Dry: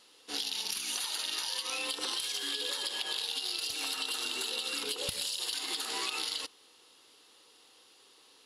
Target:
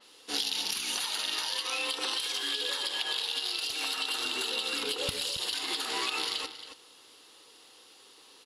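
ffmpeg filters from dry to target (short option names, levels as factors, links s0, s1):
-filter_complex "[0:a]asettb=1/sr,asplit=3[s0][s1][s2];[s0]atrim=end=1.574[s3];[s1]atrim=start=1.57:end=4.14,asetpts=PTS-STARTPTS,afade=t=in:d=0.004:c=qsin,afade=t=out:st=2.566:d=0.004:c=qsin,lowshelf=f=330:g=-6.5[s4];[s2]atrim=start=4.136[s5];[s3][s4]acrossfade=d=0.004:c1=hsin:c2=qsin[s6];[s6][s5]acrossfade=d=0.004:c1=qsin:c2=hsin,asplit=2[s7][s8];[s8]adelay=274.1,volume=0.316,highshelf=f=4000:g=-6.17[s9];[s7][s9]amix=inputs=2:normalize=0,adynamicequalizer=threshold=0.00398:dfrequency=4500:dqfactor=0.7:tfrequency=4500:tqfactor=0.7:attack=5:release=100:ratio=0.375:range=3:mode=cutabove:tftype=highshelf,volume=1.68"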